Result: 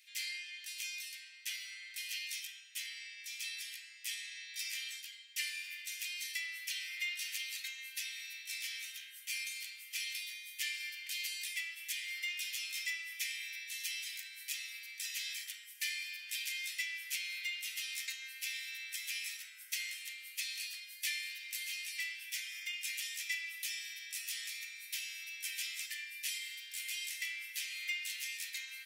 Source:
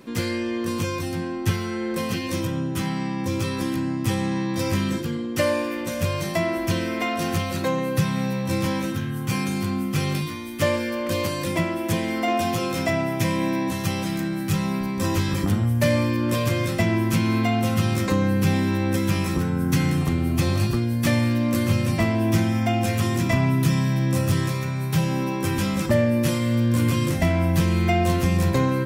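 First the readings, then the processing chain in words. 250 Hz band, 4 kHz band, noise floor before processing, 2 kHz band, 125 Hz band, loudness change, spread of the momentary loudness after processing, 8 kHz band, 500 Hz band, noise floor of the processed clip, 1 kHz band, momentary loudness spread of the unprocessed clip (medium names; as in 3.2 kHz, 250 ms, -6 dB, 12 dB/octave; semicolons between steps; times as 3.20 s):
under -40 dB, -6.0 dB, -29 dBFS, -9.0 dB, under -40 dB, -16.0 dB, 6 LU, -6.0 dB, under -40 dB, -53 dBFS, under -40 dB, 6 LU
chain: steep high-pass 2 kHz 48 dB/octave; trim -6 dB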